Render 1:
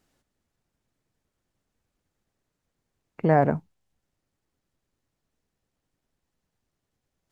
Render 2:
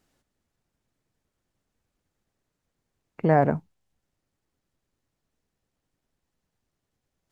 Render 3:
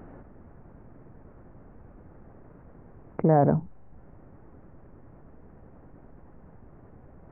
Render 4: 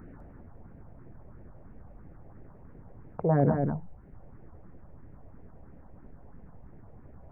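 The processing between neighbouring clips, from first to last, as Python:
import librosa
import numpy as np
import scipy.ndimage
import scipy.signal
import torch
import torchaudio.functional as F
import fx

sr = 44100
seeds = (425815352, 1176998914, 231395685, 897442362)

y1 = x
y2 = scipy.ndimage.gaussian_filter1d(y1, 6.6, mode='constant')
y2 = fx.env_flatten(y2, sr, amount_pct=50)
y3 = fx.phaser_stages(y2, sr, stages=4, low_hz=240.0, high_hz=1100.0, hz=3.0, feedback_pct=5)
y3 = y3 + 10.0 ** (-4.5 / 20.0) * np.pad(y3, (int(203 * sr / 1000.0), 0))[:len(y3)]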